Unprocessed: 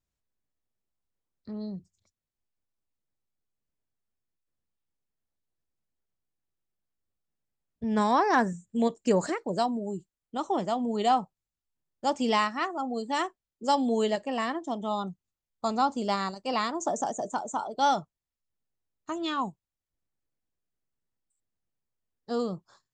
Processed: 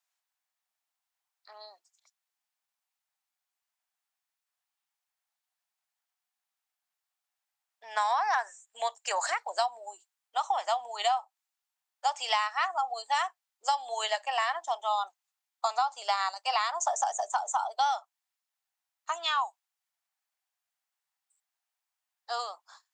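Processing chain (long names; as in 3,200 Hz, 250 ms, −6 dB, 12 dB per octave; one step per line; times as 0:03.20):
elliptic high-pass filter 740 Hz, stop band 80 dB
downward compressor 10 to 1, threshold −31 dBFS, peak gain reduction 12 dB
level +7 dB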